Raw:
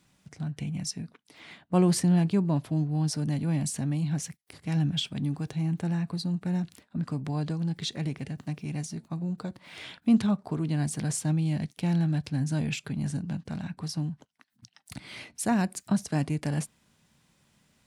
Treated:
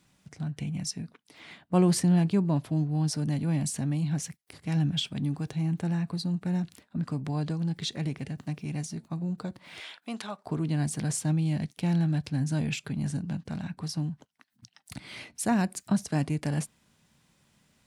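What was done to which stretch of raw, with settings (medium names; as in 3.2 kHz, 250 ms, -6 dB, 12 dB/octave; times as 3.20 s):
9.80–10.46 s: high-pass 590 Hz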